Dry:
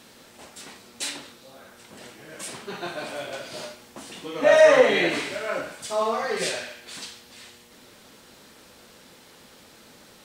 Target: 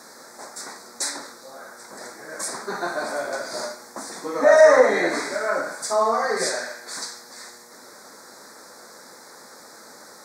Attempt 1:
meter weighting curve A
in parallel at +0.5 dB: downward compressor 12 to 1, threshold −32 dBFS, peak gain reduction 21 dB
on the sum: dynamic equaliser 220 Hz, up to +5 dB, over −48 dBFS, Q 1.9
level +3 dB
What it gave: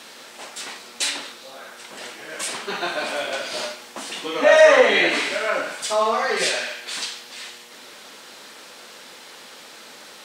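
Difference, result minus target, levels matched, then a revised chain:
4,000 Hz band +7.0 dB
meter weighting curve A
in parallel at +0.5 dB: downward compressor 12 to 1, threshold −32 dBFS, peak gain reduction 21 dB
on the sum: dynamic equaliser 220 Hz, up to +5 dB, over −48 dBFS, Q 1.9
Butterworth band-reject 2,900 Hz, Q 1
level +3 dB

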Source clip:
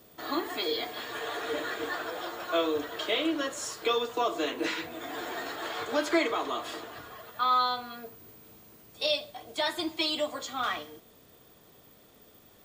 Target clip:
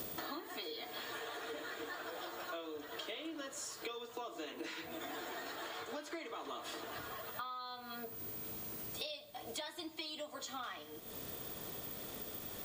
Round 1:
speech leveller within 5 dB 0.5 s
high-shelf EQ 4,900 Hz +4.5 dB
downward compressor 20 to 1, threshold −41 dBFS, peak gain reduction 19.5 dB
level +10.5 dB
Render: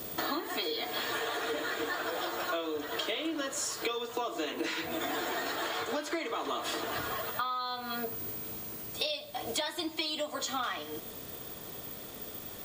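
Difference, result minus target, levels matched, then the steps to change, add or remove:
downward compressor: peak gain reduction −10.5 dB
change: downward compressor 20 to 1, threshold −52 dBFS, peak gain reduction 30 dB

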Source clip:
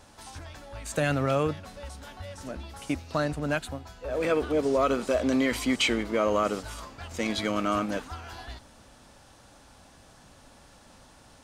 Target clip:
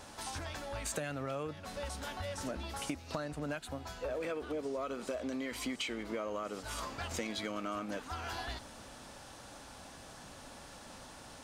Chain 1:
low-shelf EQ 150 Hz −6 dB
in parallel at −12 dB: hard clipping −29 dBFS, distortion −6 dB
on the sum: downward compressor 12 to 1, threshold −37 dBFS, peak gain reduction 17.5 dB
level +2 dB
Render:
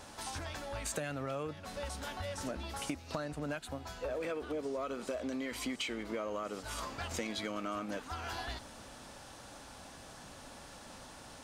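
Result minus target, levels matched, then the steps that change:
hard clipping: distortion −4 dB
change: hard clipping −36.5 dBFS, distortion −2 dB

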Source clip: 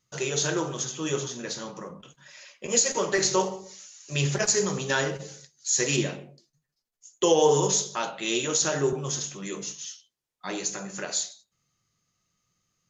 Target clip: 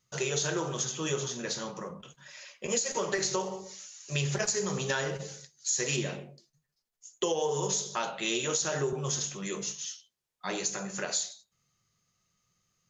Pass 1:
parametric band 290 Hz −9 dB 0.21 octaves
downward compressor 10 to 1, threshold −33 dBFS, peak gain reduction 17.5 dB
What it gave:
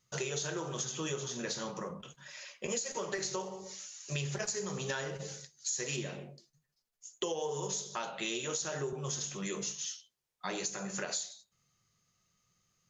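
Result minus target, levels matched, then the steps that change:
downward compressor: peak gain reduction +6.5 dB
change: downward compressor 10 to 1, threshold −26 dBFS, peak gain reduction 11 dB

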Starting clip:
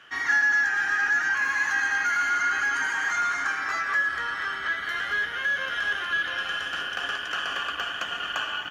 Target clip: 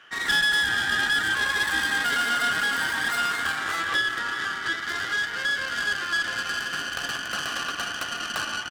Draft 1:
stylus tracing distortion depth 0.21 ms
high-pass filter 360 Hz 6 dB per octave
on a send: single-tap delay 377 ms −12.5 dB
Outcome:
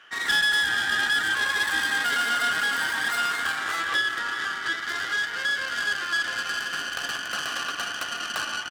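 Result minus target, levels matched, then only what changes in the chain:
125 Hz band −5.5 dB
change: high-pass filter 150 Hz 6 dB per octave

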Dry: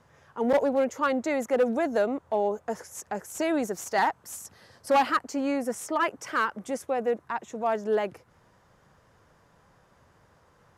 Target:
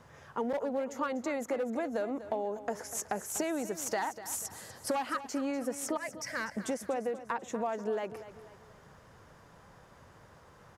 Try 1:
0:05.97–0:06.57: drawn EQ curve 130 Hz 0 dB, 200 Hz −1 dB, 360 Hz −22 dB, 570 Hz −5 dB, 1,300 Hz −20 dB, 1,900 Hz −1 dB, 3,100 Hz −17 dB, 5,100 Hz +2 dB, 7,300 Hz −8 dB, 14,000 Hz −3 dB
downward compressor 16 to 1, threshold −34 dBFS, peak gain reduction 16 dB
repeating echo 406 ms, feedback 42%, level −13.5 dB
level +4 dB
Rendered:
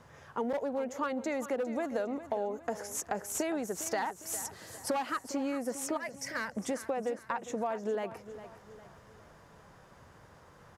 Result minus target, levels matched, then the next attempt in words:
echo 161 ms late
0:05.97–0:06.57: drawn EQ curve 130 Hz 0 dB, 200 Hz −1 dB, 360 Hz −22 dB, 570 Hz −5 dB, 1,300 Hz −20 dB, 1,900 Hz −1 dB, 3,100 Hz −17 dB, 5,100 Hz +2 dB, 7,300 Hz −8 dB, 14,000 Hz −3 dB
downward compressor 16 to 1, threshold −34 dBFS, peak gain reduction 16 dB
repeating echo 245 ms, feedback 42%, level −13.5 dB
level +4 dB

